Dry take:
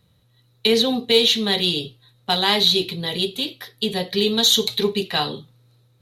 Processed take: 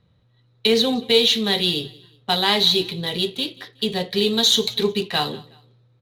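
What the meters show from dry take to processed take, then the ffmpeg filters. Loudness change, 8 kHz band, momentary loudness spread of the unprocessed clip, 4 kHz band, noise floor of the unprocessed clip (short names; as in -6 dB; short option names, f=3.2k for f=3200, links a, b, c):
-0.5 dB, -1.5 dB, 12 LU, -0.5 dB, -60 dBFS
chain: -af "adynamicsmooth=sensitivity=7.5:basefreq=3.8k,aecho=1:1:184|368:0.075|0.0255"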